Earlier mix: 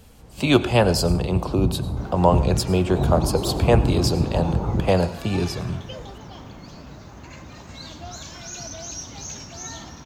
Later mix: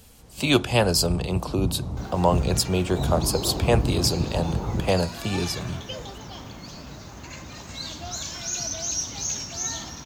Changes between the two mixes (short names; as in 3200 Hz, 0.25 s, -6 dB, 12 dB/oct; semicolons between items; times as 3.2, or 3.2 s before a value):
speech: send off; first sound -4.0 dB; master: add high shelf 3100 Hz +9 dB